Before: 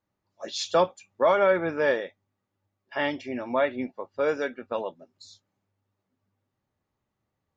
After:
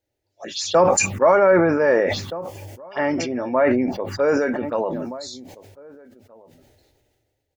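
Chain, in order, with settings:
0:01.93–0:04.05: notch filter 3,900 Hz, Q 5.6
phaser swept by the level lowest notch 190 Hz, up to 3,400 Hz, full sweep at −27.5 dBFS
slap from a distant wall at 270 metres, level −24 dB
level that may fall only so fast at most 28 dB per second
level +6 dB

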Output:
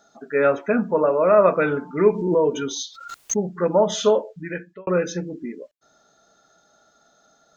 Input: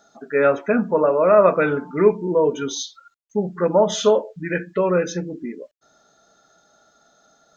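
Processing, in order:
0:02.07–0:03.39: background raised ahead of every attack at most 57 dB per second
0:04.29–0:04.87: fade out
level −1.5 dB

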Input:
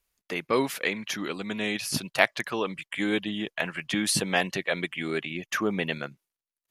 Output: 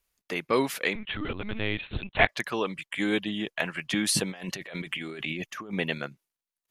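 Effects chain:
0:00.95–0:02.29: linear-prediction vocoder at 8 kHz pitch kept
0:04.30–0:05.73: compressor whose output falls as the input rises −37 dBFS, ratio −1

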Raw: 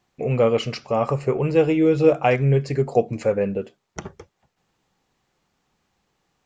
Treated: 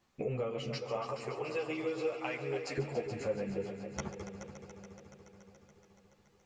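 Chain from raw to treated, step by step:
0:00.78–0:02.78: high-pass filter 1,100 Hz 6 dB per octave
downward compressor 5 to 1, threshold −31 dBFS, peak gain reduction 17 dB
echo machine with several playback heads 142 ms, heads all three, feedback 69%, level −14.5 dB
string-ensemble chorus

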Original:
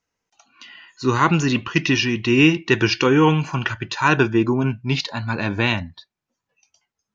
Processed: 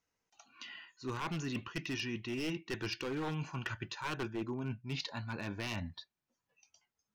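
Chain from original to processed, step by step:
wavefolder on the positive side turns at −11.5 dBFS
reversed playback
downward compressor 4 to 1, threshold −32 dBFS, peak gain reduction 16.5 dB
reversed playback
level −6 dB

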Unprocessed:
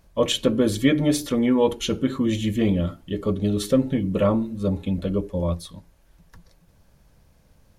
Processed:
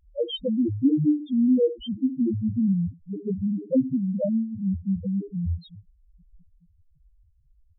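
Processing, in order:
parametric band 1,200 Hz −9.5 dB 1.2 octaves
spectral peaks only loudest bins 1
level +5.5 dB

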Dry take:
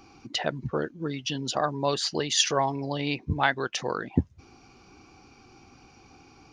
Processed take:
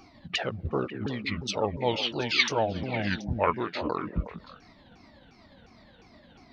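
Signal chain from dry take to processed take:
pitch shifter swept by a sawtooth −9 semitones, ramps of 354 ms
echo through a band-pass that steps 182 ms, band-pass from 250 Hz, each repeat 1.4 octaves, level −5.5 dB

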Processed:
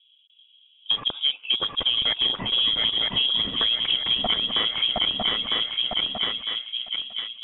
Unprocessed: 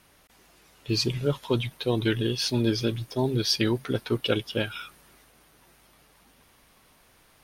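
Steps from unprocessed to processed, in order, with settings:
adaptive Wiener filter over 25 samples
high-pass filter 240 Hz 24 dB per octave
feedback echo with a long and a short gap by turns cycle 953 ms, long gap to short 3 to 1, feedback 48%, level −5.5 dB
in parallel at +1 dB: brickwall limiter −17.5 dBFS, peak gain reduction 8.5 dB
on the sum: downward compressor 6 to 1, threshold −26 dBFS, peak gain reduction 11.5 dB
soft clipping −19.5 dBFS, distortion −21 dB
low-pass that shuts in the quiet parts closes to 310 Hz, open at −25.5 dBFS
voice inversion scrambler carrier 3,600 Hz
level +7.5 dB

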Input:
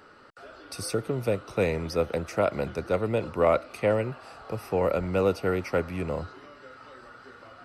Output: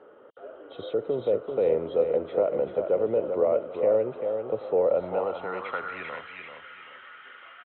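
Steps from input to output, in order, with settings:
hearing-aid frequency compression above 2,800 Hz 4 to 1
brickwall limiter −20.5 dBFS, peak gain reduction 9 dB
on a send: repeating echo 390 ms, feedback 32%, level −6.5 dB
on the sum: band-pass filter sweep 500 Hz → 2,100 Hz, 0:04.82–0:06.28
level +8.5 dB

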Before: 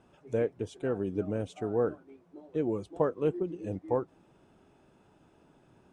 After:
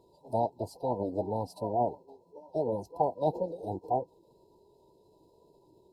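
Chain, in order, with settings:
brick-wall band-stop 1,000–2,600 Hz
formants moved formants +6 semitones

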